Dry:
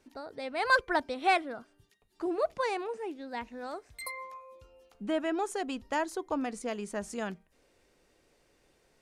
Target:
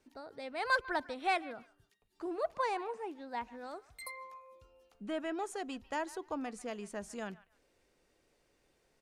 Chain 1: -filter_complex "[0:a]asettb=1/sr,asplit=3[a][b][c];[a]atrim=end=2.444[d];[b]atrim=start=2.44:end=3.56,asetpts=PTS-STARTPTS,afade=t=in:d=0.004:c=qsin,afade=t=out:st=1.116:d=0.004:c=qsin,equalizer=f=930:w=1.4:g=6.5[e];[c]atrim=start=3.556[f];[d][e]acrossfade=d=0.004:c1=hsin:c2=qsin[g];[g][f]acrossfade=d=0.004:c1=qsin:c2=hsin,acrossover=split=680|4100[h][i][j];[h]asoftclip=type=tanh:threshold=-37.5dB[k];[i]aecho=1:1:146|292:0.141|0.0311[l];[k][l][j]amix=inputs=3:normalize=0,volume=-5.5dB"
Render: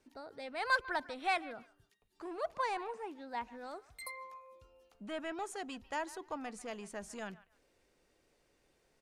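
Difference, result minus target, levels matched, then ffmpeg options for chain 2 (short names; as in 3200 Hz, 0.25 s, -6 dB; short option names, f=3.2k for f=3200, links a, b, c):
soft clip: distortion +12 dB
-filter_complex "[0:a]asettb=1/sr,asplit=3[a][b][c];[a]atrim=end=2.444[d];[b]atrim=start=2.44:end=3.56,asetpts=PTS-STARTPTS,afade=t=in:d=0.004:c=qsin,afade=t=out:st=1.116:d=0.004:c=qsin,equalizer=f=930:w=1.4:g=6.5[e];[c]atrim=start=3.556[f];[d][e]acrossfade=d=0.004:c1=hsin:c2=qsin[g];[g][f]acrossfade=d=0.004:c1=qsin:c2=hsin,acrossover=split=680|4100[h][i][j];[h]asoftclip=type=tanh:threshold=-26.5dB[k];[i]aecho=1:1:146|292:0.141|0.0311[l];[k][l][j]amix=inputs=3:normalize=0,volume=-5.5dB"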